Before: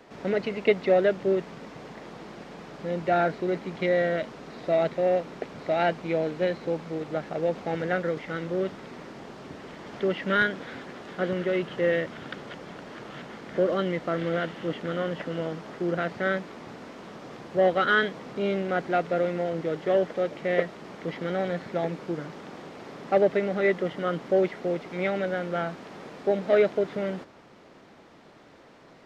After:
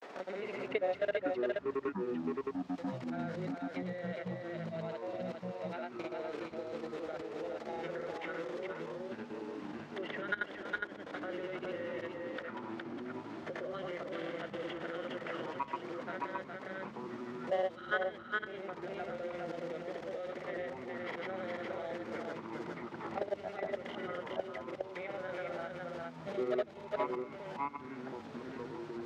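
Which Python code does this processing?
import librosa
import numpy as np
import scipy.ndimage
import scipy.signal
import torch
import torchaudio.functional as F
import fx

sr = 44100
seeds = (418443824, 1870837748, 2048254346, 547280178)

y = scipy.signal.sosfilt(scipy.signal.butter(2, 440.0, 'highpass', fs=sr, output='sos'), x)
y = fx.level_steps(y, sr, step_db=21)
y = fx.granulator(y, sr, seeds[0], grain_ms=100.0, per_s=20.0, spray_ms=100.0, spread_st=0)
y = y + 10.0 ** (-4.0 / 20.0) * np.pad(y, (int(412 * sr / 1000.0), 0))[:len(y)]
y = fx.echo_pitch(y, sr, ms=133, semitones=-7, count=3, db_per_echo=-6.0)
y = fx.band_squash(y, sr, depth_pct=70)
y = y * 10.0 ** (-1.5 / 20.0)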